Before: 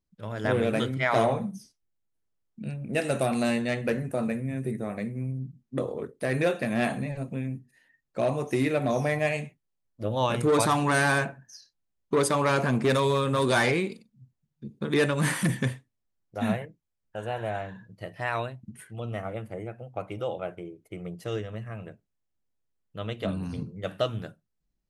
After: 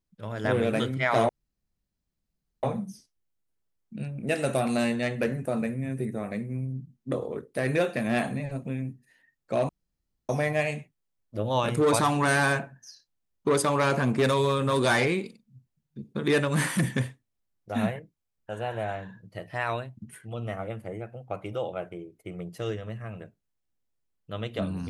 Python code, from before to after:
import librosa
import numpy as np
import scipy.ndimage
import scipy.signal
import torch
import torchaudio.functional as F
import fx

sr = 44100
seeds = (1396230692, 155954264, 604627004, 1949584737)

y = fx.edit(x, sr, fx.insert_room_tone(at_s=1.29, length_s=1.34),
    fx.room_tone_fill(start_s=8.35, length_s=0.6), tone=tone)